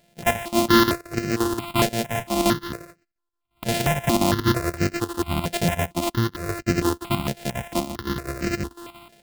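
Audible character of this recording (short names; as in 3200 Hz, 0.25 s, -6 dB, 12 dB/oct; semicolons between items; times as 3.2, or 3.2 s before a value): a buzz of ramps at a fixed pitch in blocks of 128 samples; chopped level 5.7 Hz, depth 65%, duty 75%; aliases and images of a low sample rate 6100 Hz, jitter 20%; notches that jump at a steady rate 4.4 Hz 310–3400 Hz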